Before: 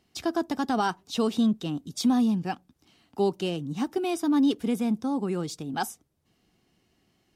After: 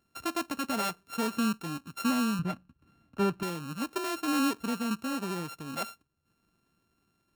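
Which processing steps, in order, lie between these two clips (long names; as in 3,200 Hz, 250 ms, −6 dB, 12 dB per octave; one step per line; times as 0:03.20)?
samples sorted by size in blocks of 32 samples
0:02.39–0:03.43: bass and treble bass +10 dB, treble −10 dB
level −5.5 dB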